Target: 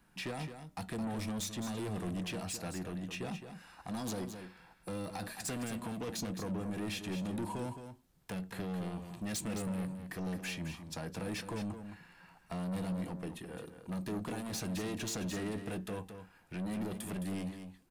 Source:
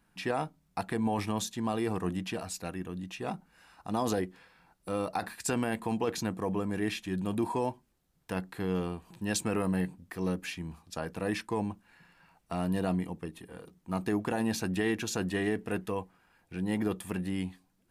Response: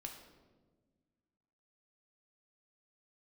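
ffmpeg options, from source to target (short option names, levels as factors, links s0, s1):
-filter_complex "[0:a]acrossover=split=280|3000[s0][s1][s2];[s1]acompressor=threshold=0.0112:ratio=6[s3];[s0][s3][s2]amix=inputs=3:normalize=0,asoftclip=type=tanh:threshold=0.015,flanger=delay=5.3:depth=1.5:regen=-87:speed=0.24:shape=triangular,asplit=2[s4][s5];[s5]aecho=0:1:215:0.355[s6];[s4][s6]amix=inputs=2:normalize=0,volume=2.11"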